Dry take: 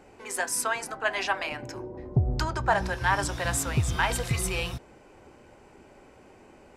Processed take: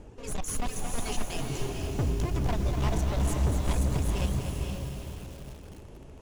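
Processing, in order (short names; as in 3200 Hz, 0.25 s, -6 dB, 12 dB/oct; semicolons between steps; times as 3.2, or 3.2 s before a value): minimum comb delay 0.31 ms; RIAA curve playback; reverb removal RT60 0.84 s; band shelf 7500 Hz +11.5 dB; in parallel at -0.5 dB: compressor, threshold -24 dBFS, peak gain reduction 17 dB; on the sum: overloaded stage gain 18.5 dB; on a send: diffused feedback echo 0.505 s, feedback 42%, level -3.5 dB; on the sum: speed mistake 44.1 kHz file played as 48 kHz; lo-fi delay 0.243 s, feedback 35%, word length 6-bit, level -7 dB; gain -7.5 dB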